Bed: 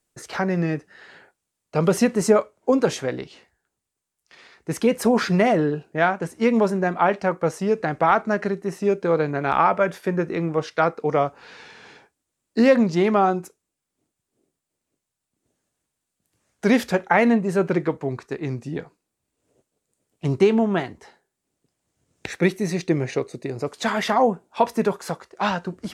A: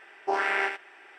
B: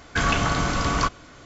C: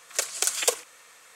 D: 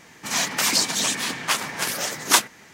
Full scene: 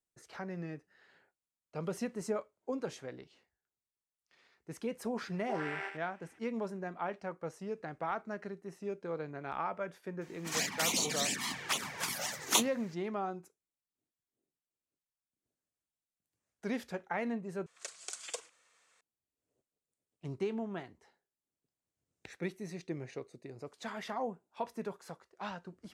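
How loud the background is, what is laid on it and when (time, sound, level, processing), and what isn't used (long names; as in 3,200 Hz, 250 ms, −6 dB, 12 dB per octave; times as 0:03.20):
bed −18.5 dB
0:05.21: mix in A −13.5 dB
0:10.21: mix in D −7.5 dB + flanger swept by the level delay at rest 6.1 ms, full sweep at −18 dBFS
0:17.66: overwrite with C −17 dB + low-pass filter 9,100 Hz 24 dB per octave
not used: B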